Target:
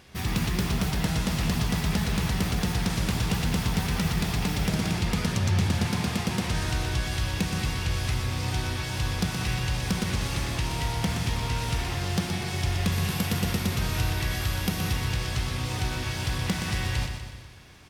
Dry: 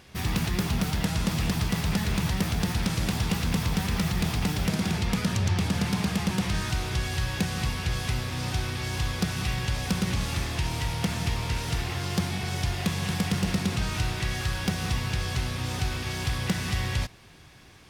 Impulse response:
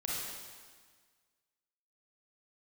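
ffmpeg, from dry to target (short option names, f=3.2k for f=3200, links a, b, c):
-filter_complex "[0:a]asettb=1/sr,asplit=3[a][b][c];[a]atrim=end=12.924[d];[b]atrim=start=12.92:end=14.92,asetpts=PTS-STARTPTS,afade=t=in:d=0.004:c=qsin,afade=t=out:st=1.996:d=0.004:c=qsin,equalizer=f=12k:w=4.2:g=12.5[e];[c]atrim=start=14.916[f];[d][e]acrossfade=d=0.004:c1=hsin:c2=qsin[g];[g][f]acrossfade=d=0.004:c1=qsin:c2=hsin,aecho=1:1:122|244|366|488|610|732:0.447|0.237|0.125|0.0665|0.0352|0.0187,asplit=2[h][i];[1:a]atrim=start_sample=2205[j];[i][j]afir=irnorm=-1:irlink=0,volume=-16.5dB[k];[h][k]amix=inputs=2:normalize=0,volume=-1.5dB"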